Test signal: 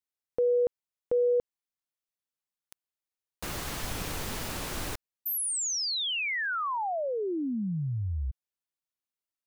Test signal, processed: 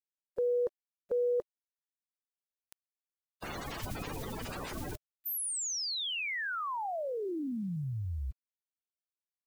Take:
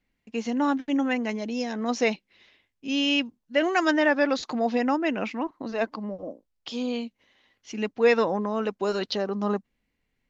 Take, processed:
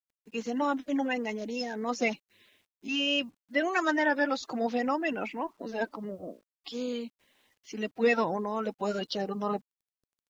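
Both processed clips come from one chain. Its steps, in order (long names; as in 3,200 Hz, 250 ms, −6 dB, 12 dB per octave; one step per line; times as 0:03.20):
spectral magnitudes quantised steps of 30 dB
bit reduction 11 bits
level −4 dB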